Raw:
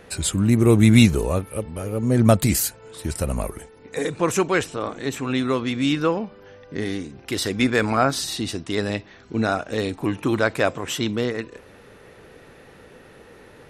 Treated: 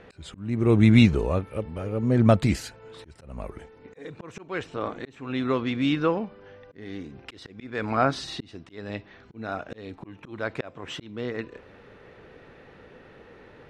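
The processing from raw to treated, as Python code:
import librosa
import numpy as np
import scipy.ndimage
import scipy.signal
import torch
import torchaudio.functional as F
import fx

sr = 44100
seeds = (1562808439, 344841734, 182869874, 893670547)

y = scipy.signal.sosfilt(scipy.signal.butter(2, 3600.0, 'lowpass', fs=sr, output='sos'), x)
y = fx.auto_swell(y, sr, attack_ms=444.0)
y = y * 10.0 ** (-2.5 / 20.0)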